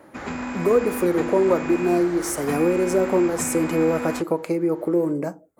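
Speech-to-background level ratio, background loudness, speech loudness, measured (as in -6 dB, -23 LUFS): 8.5 dB, -30.5 LUFS, -22.0 LUFS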